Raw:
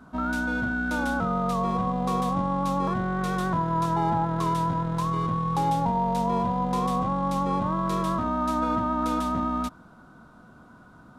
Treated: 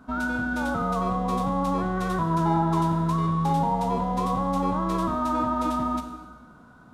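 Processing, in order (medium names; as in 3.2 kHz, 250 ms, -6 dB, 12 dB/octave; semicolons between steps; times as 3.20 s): on a send at -6 dB: reverberation RT60 2.1 s, pre-delay 18 ms; on the sum: time stretch by phase-locked vocoder 0.62×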